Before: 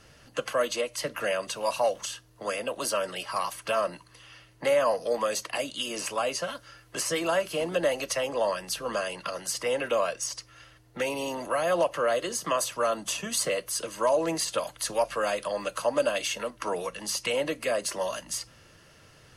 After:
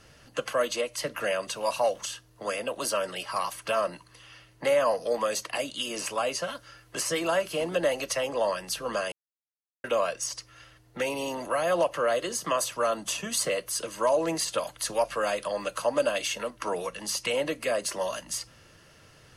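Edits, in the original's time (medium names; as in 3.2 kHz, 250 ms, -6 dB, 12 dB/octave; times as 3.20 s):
9.12–9.84 s: mute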